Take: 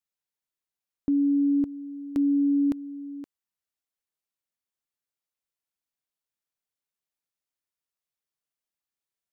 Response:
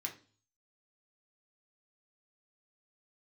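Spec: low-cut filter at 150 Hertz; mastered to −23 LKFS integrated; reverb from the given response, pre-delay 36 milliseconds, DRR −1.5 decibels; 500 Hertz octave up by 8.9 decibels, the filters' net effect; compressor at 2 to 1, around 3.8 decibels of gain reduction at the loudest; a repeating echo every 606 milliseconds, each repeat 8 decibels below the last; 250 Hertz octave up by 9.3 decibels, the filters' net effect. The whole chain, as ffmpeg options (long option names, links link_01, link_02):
-filter_complex "[0:a]highpass=150,equalizer=frequency=250:width_type=o:gain=8.5,equalizer=frequency=500:width_type=o:gain=8,acompressor=threshold=-18dB:ratio=2,aecho=1:1:606|1212|1818|2424|3030:0.398|0.159|0.0637|0.0255|0.0102,asplit=2[link_01][link_02];[1:a]atrim=start_sample=2205,adelay=36[link_03];[link_02][link_03]afir=irnorm=-1:irlink=0,volume=2dB[link_04];[link_01][link_04]amix=inputs=2:normalize=0"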